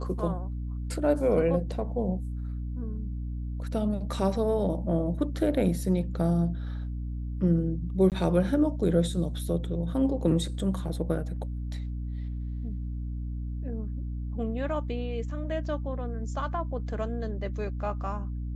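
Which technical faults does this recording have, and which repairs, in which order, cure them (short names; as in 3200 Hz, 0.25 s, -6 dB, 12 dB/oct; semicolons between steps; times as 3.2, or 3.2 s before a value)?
hum 60 Hz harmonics 5 -33 dBFS
8.1–8.12 gap 18 ms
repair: de-hum 60 Hz, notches 5; interpolate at 8.1, 18 ms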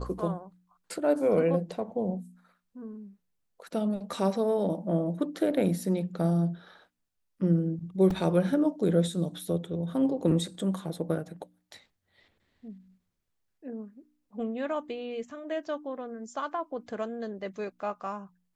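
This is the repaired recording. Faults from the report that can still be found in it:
none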